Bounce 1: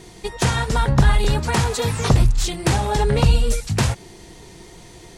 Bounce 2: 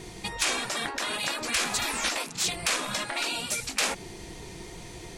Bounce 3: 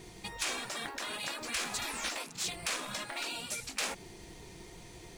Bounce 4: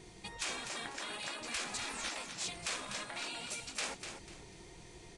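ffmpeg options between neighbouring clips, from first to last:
-af "afftfilt=real='re*lt(hypot(re,im),0.158)':imag='im*lt(hypot(re,im),0.158)':win_size=1024:overlap=0.75,equalizer=f=2.4k:w=5.3:g=4.5"
-af "acrusher=bits=5:mode=log:mix=0:aa=0.000001,volume=-8dB"
-af "aecho=1:1:247|494|741|988:0.398|0.119|0.0358|0.0107,aresample=22050,aresample=44100,volume=-4dB"

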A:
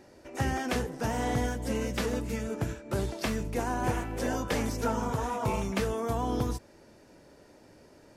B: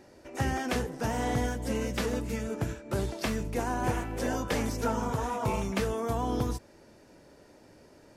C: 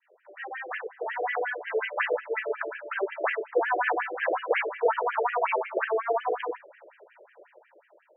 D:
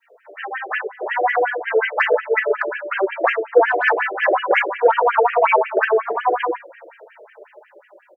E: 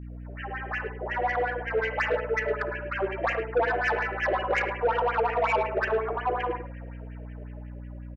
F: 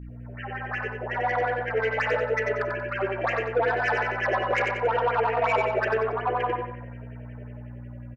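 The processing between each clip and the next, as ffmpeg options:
-af anull
-af "dynaudnorm=f=370:g=7:m=10.5dB,adynamicequalizer=threshold=0.0126:dfrequency=1800:dqfactor=1.1:tfrequency=1800:tqfactor=1.1:attack=5:release=100:ratio=0.375:range=3:mode=boostabove:tftype=bell,afftfilt=real='re*between(b*sr/1024,470*pow(2300/470,0.5+0.5*sin(2*PI*5.5*pts/sr))/1.41,470*pow(2300/470,0.5+0.5*sin(2*PI*5.5*pts/sr))*1.41)':imag='im*between(b*sr/1024,470*pow(2300/470,0.5+0.5*sin(2*PI*5.5*pts/sr))/1.41,470*pow(2300/470,0.5+0.5*sin(2*PI*5.5*pts/sr))*1.41)':win_size=1024:overlap=0.75"
-filter_complex "[0:a]acontrast=73,asplit=2[a][b];[b]adelay=3.9,afreqshift=-0.58[c];[a][c]amix=inputs=2:normalize=1,volume=6.5dB"
-filter_complex "[0:a]asplit=2[a][b];[b]aecho=0:1:56|72|106:0.168|0.126|0.266[c];[a][c]amix=inputs=2:normalize=0,asoftclip=type=tanh:threshold=-9.5dB,aeval=exprs='val(0)+0.0316*(sin(2*PI*60*n/s)+sin(2*PI*2*60*n/s)/2+sin(2*PI*3*60*n/s)/3+sin(2*PI*4*60*n/s)/4+sin(2*PI*5*60*n/s)/5)':c=same,volume=-8dB"
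-af "aecho=1:1:92|184|276|368|460:0.596|0.22|0.0815|0.0302|0.0112"

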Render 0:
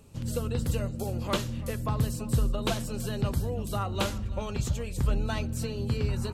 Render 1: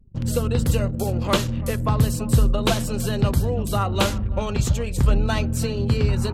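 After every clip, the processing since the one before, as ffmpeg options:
-af "anlmdn=0.0631,areverse,acompressor=mode=upward:threshold=-42dB:ratio=2.5,areverse,volume=8.5dB"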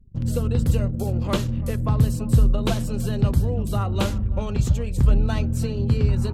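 -af "lowshelf=f=370:g=8.5,volume=-7dB"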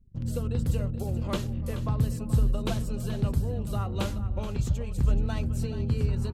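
-af "aecho=1:1:428:0.237,volume=-7dB"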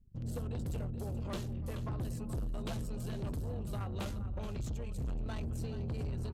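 -af "asoftclip=type=tanh:threshold=-29dB,volume=-4.5dB"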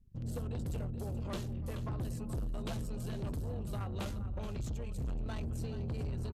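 -af "aresample=32000,aresample=44100"

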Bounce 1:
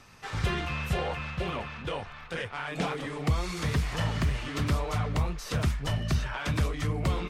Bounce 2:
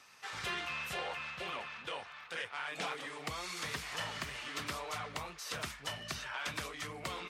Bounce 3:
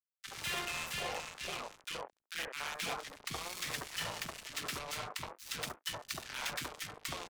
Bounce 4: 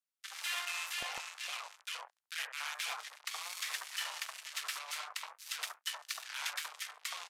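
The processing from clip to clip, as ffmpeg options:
-af "highpass=f=1.2k:p=1,volume=-2dB"
-filter_complex "[0:a]acrusher=bits=5:mix=0:aa=0.5,acrossover=split=290|1400[a][b][c];[a]adelay=30[d];[b]adelay=70[e];[d][e][c]amix=inputs=3:normalize=0,volume=2dB"
-filter_complex "[0:a]acrossover=split=790|1600[a][b][c];[a]acrusher=bits=3:dc=4:mix=0:aa=0.000001[d];[d][b][c]amix=inputs=3:normalize=0,volume=1dB" -ar 32000 -c:a libvorbis -b:a 96k

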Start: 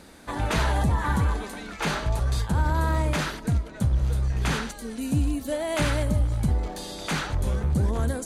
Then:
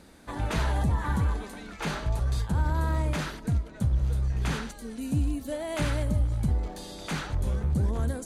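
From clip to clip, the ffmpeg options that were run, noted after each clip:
-af "lowshelf=f=320:g=4,volume=-6dB"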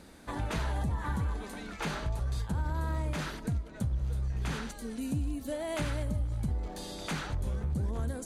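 -af "acompressor=threshold=-33dB:ratio=2"

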